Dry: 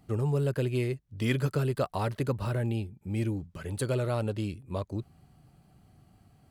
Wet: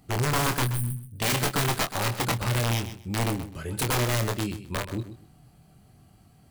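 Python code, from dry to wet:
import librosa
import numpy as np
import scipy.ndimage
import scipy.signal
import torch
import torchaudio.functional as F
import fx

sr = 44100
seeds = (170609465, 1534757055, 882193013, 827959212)

p1 = fx.high_shelf(x, sr, hz=4100.0, db=5.5)
p2 = (np.mod(10.0 ** (23.0 / 20.0) * p1 + 1.0, 2.0) - 1.0) / 10.0 ** (23.0 / 20.0)
p3 = fx.spec_box(p2, sr, start_s=0.64, length_s=0.39, low_hz=250.0, high_hz=8200.0, gain_db=-28)
p4 = fx.doubler(p3, sr, ms=25.0, db=-7)
p5 = p4 + fx.echo_feedback(p4, sr, ms=128, feedback_pct=20, wet_db=-12, dry=0)
y = F.gain(torch.from_numpy(p5), 2.5).numpy()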